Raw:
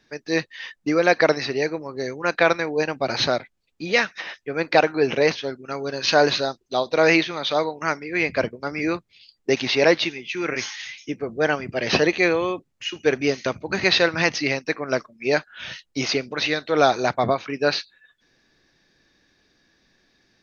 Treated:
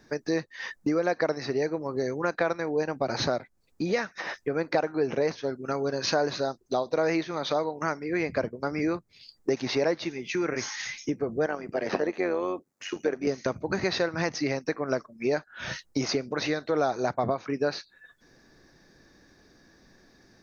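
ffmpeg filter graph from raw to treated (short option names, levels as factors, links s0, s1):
-filter_complex "[0:a]asettb=1/sr,asplit=3[s0][s1][s2];[s0]atrim=end=11.464[s3];[s1]atrim=start=11.46:end=13.27,asetpts=PTS-STARTPTS,afade=t=in:d=0.004:c=qsin,afade=t=out:st=1.806:d=0.004:c=qsin,highpass=240,acrossover=split=2600[s4][s5];[s5]acompressor=threshold=0.0141:ratio=4:attack=1:release=60[s6];[s4][s6]amix=inputs=2:normalize=0,tremolo=f=94:d=0.571[s7];[s2]atrim=start=13.266[s8];[s3][s7]acrossfade=d=0.004:c1=hsin:c2=qsin[s9];[s9][s8]acrossfade=d=0.004:c1=qsin:c2=hsin,equalizer=f=3000:t=o:w=1.2:g=-13.5,acompressor=threshold=0.0158:ratio=3,volume=2.51"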